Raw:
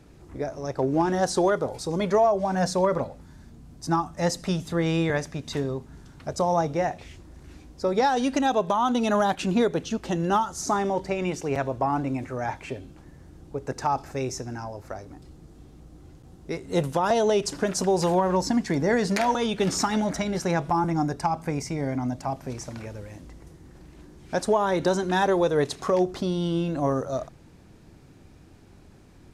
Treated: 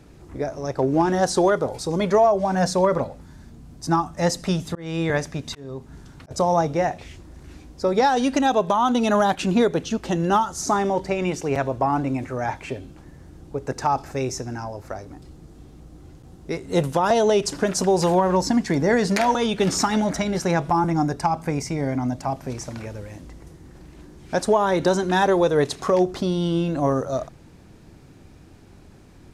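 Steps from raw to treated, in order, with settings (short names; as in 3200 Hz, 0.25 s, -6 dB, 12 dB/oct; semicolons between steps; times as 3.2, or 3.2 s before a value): 4.18–6.31 auto swell 0.389 s; gain +3.5 dB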